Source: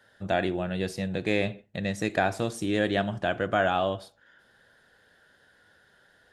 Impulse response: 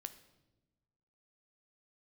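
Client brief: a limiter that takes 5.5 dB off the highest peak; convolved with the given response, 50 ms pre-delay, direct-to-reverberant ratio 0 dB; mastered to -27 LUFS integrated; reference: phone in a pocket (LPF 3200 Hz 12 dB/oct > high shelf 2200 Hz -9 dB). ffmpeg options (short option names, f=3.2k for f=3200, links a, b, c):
-filter_complex "[0:a]alimiter=limit=-16dB:level=0:latency=1,asplit=2[a][b];[1:a]atrim=start_sample=2205,adelay=50[c];[b][c]afir=irnorm=-1:irlink=0,volume=4dB[d];[a][d]amix=inputs=2:normalize=0,lowpass=3.2k,highshelf=f=2.2k:g=-9,volume=1dB"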